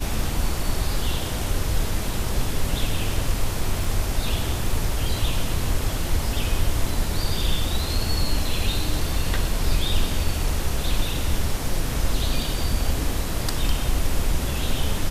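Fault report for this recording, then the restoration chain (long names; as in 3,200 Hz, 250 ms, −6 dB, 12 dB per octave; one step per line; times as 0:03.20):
0:03.84: drop-out 3.3 ms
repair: repair the gap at 0:03.84, 3.3 ms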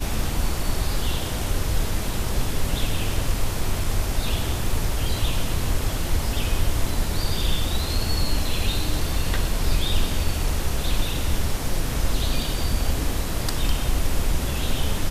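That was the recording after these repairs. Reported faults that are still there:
none of them is left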